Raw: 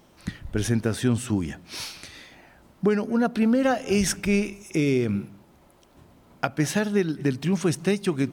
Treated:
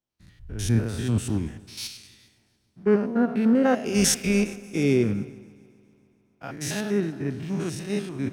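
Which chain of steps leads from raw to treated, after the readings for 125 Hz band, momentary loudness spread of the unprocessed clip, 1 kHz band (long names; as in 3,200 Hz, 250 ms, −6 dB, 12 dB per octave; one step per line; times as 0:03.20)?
0.0 dB, 12 LU, −2.5 dB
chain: spectrum averaged block by block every 100 ms
echo machine with several playback heads 138 ms, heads second and third, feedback 66%, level −17.5 dB
multiband upward and downward expander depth 100%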